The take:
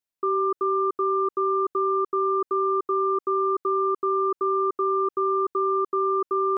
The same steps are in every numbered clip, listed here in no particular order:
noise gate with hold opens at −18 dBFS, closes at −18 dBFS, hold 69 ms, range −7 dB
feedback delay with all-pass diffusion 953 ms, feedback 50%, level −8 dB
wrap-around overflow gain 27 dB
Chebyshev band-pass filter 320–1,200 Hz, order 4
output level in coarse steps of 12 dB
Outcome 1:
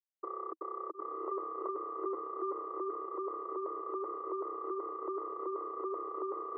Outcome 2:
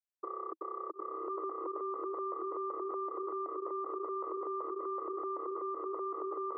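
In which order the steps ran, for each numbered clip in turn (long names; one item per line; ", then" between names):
noise gate with hold, then output level in coarse steps, then feedback delay with all-pass diffusion, then wrap-around overflow, then Chebyshev band-pass filter
noise gate with hold, then feedback delay with all-pass diffusion, then output level in coarse steps, then wrap-around overflow, then Chebyshev band-pass filter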